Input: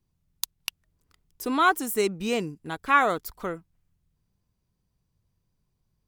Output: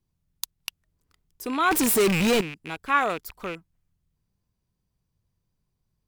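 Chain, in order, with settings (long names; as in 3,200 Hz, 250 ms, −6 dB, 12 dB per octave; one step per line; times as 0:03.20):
loose part that buzzes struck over −44 dBFS, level −24 dBFS
0:01.71–0:02.41: power curve on the samples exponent 0.35
level −2 dB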